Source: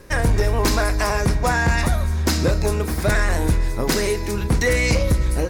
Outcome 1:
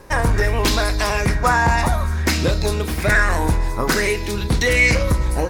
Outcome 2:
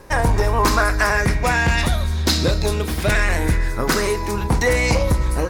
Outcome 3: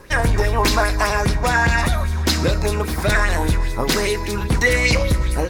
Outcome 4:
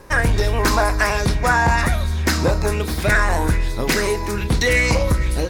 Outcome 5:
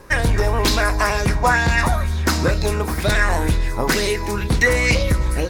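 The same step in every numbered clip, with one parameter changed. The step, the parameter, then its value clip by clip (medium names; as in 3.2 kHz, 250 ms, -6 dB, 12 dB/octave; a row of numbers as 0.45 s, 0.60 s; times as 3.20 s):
sweeping bell, rate: 0.56 Hz, 0.21 Hz, 5 Hz, 1.2 Hz, 2.1 Hz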